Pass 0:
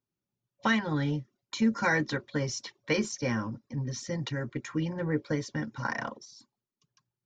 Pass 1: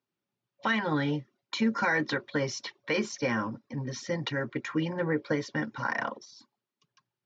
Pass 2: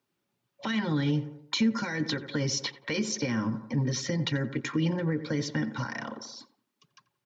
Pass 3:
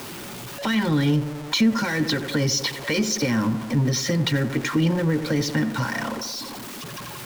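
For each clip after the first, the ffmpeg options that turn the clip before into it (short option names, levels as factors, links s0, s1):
-af "highpass=f=350:p=1,alimiter=limit=0.0668:level=0:latency=1:release=92,lowpass=4000,volume=2"
-filter_complex "[0:a]asplit=2[s0][s1];[s1]adelay=87,lowpass=f=1600:p=1,volume=0.178,asplit=2[s2][s3];[s3]adelay=87,lowpass=f=1600:p=1,volume=0.43,asplit=2[s4][s5];[s5]adelay=87,lowpass=f=1600:p=1,volume=0.43,asplit=2[s6][s7];[s7]adelay=87,lowpass=f=1600:p=1,volume=0.43[s8];[s0][s2][s4][s6][s8]amix=inputs=5:normalize=0,alimiter=limit=0.075:level=0:latency=1:release=98,acrossover=split=310|3000[s9][s10][s11];[s10]acompressor=threshold=0.00631:ratio=6[s12];[s9][s12][s11]amix=inputs=3:normalize=0,volume=2.37"
-af "aeval=exprs='val(0)+0.5*0.0178*sgn(val(0))':c=same,volume=1.88"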